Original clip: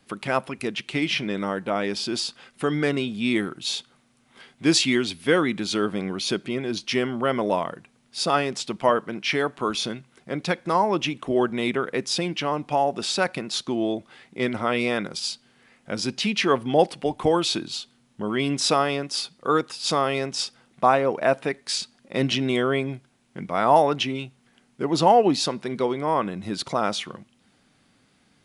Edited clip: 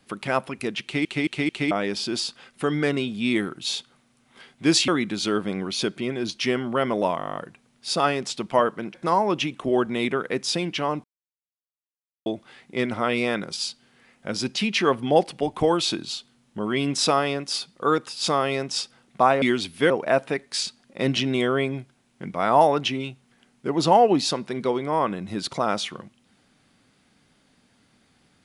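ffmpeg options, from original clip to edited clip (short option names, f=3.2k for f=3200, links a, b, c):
-filter_complex "[0:a]asplit=20[a][b][c][d][e][f][g][h][i][j][k][l][m][n][o][p][q][r][s][t];[a]atrim=end=1.052[u];[b]atrim=start=0.828:end=1.052[v];[c]atrim=start=0.828:end=1.052[w];[d]atrim=start=0.828:end=1.052[x];[e]atrim=start=1.708:end=4.882[y];[f]atrim=start=5.358:end=7.682[z];[g]atrim=start=7.658:end=7.682[aa];[h]atrim=start=7.658:end=7.682[ab];[i]atrim=start=7.658:end=7.682[ac];[j]atrim=start=7.658:end=7.682[ad];[k]atrim=start=7.658:end=7.682[ae];[l]atrim=start=7.658:end=7.682[af];[m]atrim=start=7.658:end=7.682[ag];[n]atrim=start=7.658:end=7.682[ah];[o]atrim=start=7.658:end=9.242[ai];[p]atrim=start=10.568:end=12.67,asetpts=PTS-STARTPTS,afade=t=out:st=2.098:d=0.004:c=hsin[aj];[q]atrim=start=12.67:end=13.89,asetpts=PTS-STARTPTS,volume=0[ak];[r]atrim=start=13.89:end=21.052,asetpts=PTS-STARTPTS,afade=t=in:d=0.004:c=hsin[al];[s]atrim=start=4.878:end=5.362[am];[t]atrim=start=21.048[an];[u][v]acrossfade=d=0.004:c1=hsin:c2=hsin[ao];[ao][w]acrossfade=d=0.004:c1=hsin:c2=hsin[ap];[ap][x]acrossfade=d=0.004:c1=hsin:c2=hsin[aq];[aq][y]acrossfade=d=0.004:c1=hsin:c2=hsin[ar];[ar][z]acrossfade=d=0.004:c1=hsin:c2=hsin[as];[as][aa]acrossfade=d=0.004:c1=hsin:c2=hsin[at];[at][ab]acrossfade=d=0.004:c1=hsin:c2=hsin[au];[au][ac]acrossfade=d=0.004:c1=hsin:c2=hsin[av];[av][ad]acrossfade=d=0.004:c1=hsin:c2=hsin[aw];[aw][ae]acrossfade=d=0.004:c1=hsin:c2=hsin[ax];[ax][af]acrossfade=d=0.004:c1=hsin:c2=hsin[ay];[ay][ag]acrossfade=d=0.004:c1=hsin:c2=hsin[az];[az][ah]acrossfade=d=0.004:c1=hsin:c2=hsin[ba];[ba][ai]acrossfade=d=0.004:c1=hsin:c2=hsin[bb];[aj][ak][al]concat=n=3:v=0:a=1[bc];[bb][bc]acrossfade=d=0.004:c1=hsin:c2=hsin[bd];[bd][am]acrossfade=d=0.004:c1=hsin:c2=hsin[be];[be][an]acrossfade=d=0.004:c1=hsin:c2=hsin"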